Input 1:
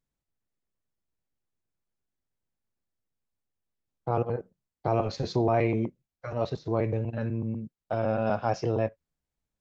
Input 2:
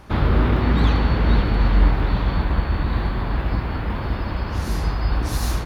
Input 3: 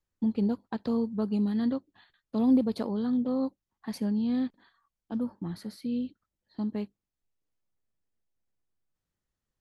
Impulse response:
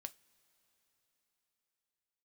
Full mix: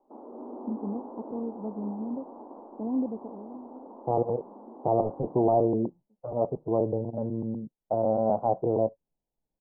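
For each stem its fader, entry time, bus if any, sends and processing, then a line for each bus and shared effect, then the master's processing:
−1.5 dB, 0.00 s, no send, hard clipping −16 dBFS, distortion −25 dB
−17.0 dB, 0.00 s, no send, elliptic high-pass filter 240 Hz, stop band 40 dB
−9.0 dB, 0.45 s, no send, automatic ducking −23 dB, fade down 0.95 s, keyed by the first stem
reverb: not used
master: Butterworth low-pass 940 Hz 48 dB per octave; parametric band 78 Hz −12.5 dB 1.6 octaves; automatic gain control gain up to 5 dB

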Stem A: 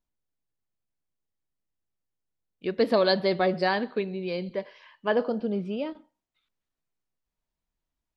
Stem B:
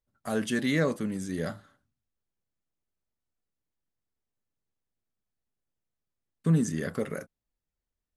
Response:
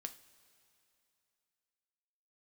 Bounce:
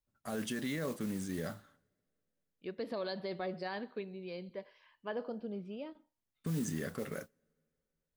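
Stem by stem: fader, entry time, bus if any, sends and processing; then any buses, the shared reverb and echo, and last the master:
−12.5 dB, 0.00 s, no send, brickwall limiter −17 dBFS, peak gain reduction 6 dB
−5.0 dB, 0.00 s, send −18 dB, noise that follows the level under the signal 18 dB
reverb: on, pre-delay 3 ms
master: brickwall limiter −27.5 dBFS, peak gain reduction 10 dB

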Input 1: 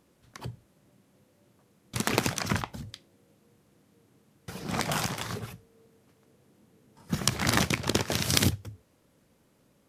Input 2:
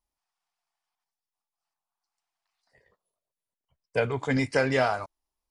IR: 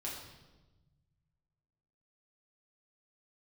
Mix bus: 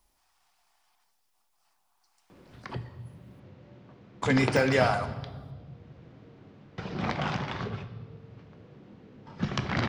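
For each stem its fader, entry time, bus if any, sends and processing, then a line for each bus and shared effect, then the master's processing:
−2.5 dB, 2.30 s, send −6 dB, Gaussian smoothing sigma 2.3 samples
+1.5 dB, 0.00 s, muted 0:03.40–0:04.22, send −7.5 dB, de-essing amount 85%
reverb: on, RT60 1.1 s, pre-delay 5 ms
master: multiband upward and downward compressor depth 40%

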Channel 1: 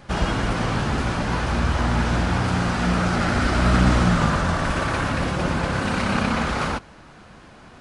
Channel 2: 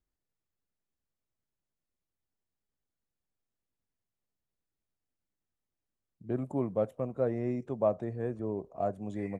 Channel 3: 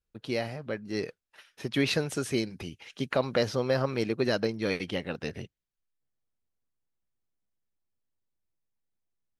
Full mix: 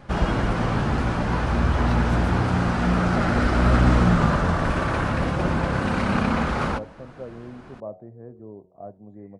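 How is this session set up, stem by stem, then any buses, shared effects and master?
+1.0 dB, 0.00 s, no send, no processing
−6.0 dB, 0.00 s, no send, moving average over 15 samples
−7.0 dB, 0.00 s, no send, no processing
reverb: not used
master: high-shelf EQ 2,300 Hz −9.5 dB; hum removal 92.25 Hz, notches 10

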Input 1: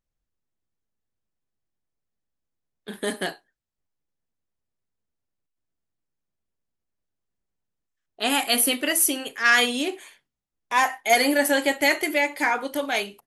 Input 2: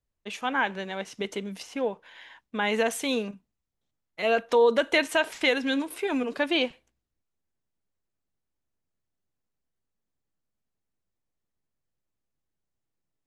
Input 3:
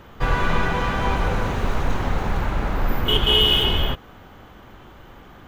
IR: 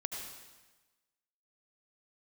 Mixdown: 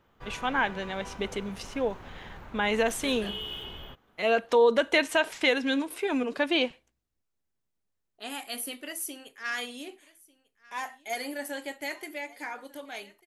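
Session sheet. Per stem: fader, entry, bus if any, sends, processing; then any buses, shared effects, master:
−15.0 dB, 0.00 s, no send, echo send −23 dB, no processing
−0.5 dB, 0.00 s, no send, no echo send, no processing
−20.0 dB, 0.00 s, no send, no echo send, low-shelf EQ 110 Hz −6 dB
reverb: not used
echo: single-tap delay 1,195 ms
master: no processing

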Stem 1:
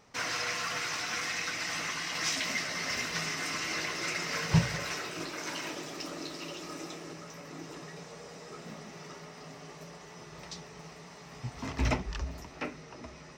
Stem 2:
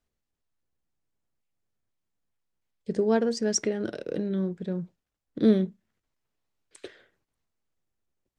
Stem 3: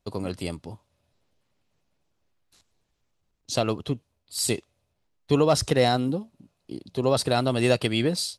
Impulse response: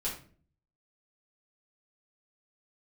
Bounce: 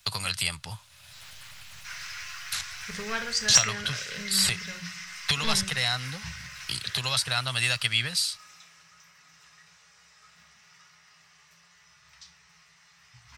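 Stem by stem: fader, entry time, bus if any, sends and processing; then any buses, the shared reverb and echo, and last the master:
−18.5 dB, 1.70 s, send −6 dB, parametric band 68 Hz +11.5 dB 0.25 octaves
−11.0 dB, 0.00 s, send −5 dB, sine wavefolder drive 3 dB, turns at −9.5 dBFS
−5.5 dB, 0.00 s, no send, multiband upward and downward compressor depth 100%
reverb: on, RT60 0.45 s, pre-delay 4 ms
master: drawn EQ curve 130 Hz 0 dB, 310 Hz −24 dB, 1,500 Hz +10 dB

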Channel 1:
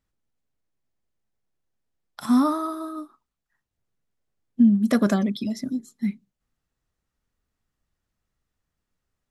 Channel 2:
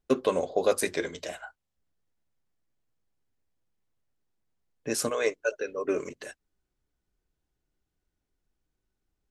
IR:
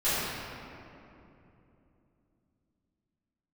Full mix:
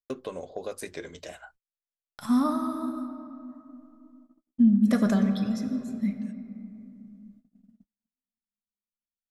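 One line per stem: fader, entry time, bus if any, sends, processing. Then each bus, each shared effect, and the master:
−6.0 dB, 0.00 s, send −19 dB, parametric band 350 Hz −10.5 dB 0.24 octaves
−4.5 dB, 0.00 s, no send, downward compressor 2.5 to 1, threshold −31 dBFS, peak gain reduction 9.5 dB; automatic ducking −17 dB, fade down 0.75 s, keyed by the first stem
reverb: on, RT60 2.9 s, pre-delay 3 ms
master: noise gate −56 dBFS, range −37 dB; low-shelf EQ 130 Hz +9.5 dB

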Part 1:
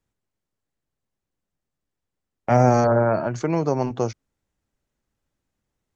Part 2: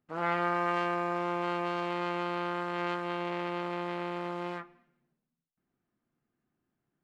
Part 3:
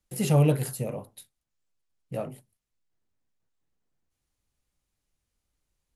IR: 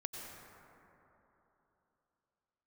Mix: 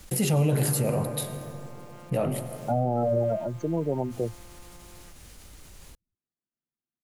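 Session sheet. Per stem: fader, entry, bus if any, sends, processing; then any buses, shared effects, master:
−4.5 dB, 0.20 s, no send, gate on every frequency bin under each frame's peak −10 dB strong
−18.5 dB, 0.50 s, no send, no processing
−2.5 dB, 0.00 s, send −4 dB, envelope flattener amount 50%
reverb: on, RT60 3.4 s, pre-delay 83 ms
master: brickwall limiter −16 dBFS, peak gain reduction 6 dB

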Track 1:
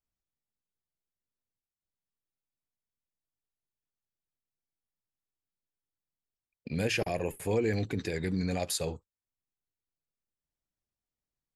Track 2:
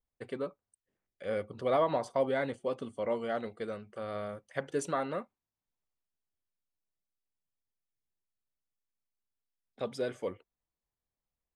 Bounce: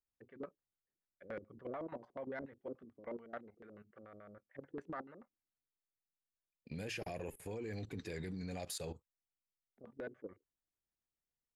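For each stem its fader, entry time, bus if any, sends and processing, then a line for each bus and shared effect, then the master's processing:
−4.5 dB, 0.00 s, no send, no processing
−9.0 dB, 0.00 s, no send, auto-filter low-pass square 6.9 Hz 330–1,800 Hz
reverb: not used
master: output level in coarse steps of 14 dB; soft clipping −31.5 dBFS, distortion −26 dB

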